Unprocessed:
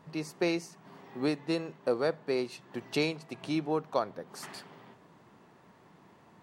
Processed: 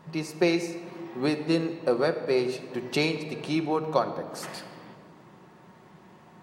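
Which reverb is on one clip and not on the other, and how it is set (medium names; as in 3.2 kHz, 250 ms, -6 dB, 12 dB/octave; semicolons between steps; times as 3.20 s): simulated room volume 3800 m³, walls mixed, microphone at 0.99 m; trim +4.5 dB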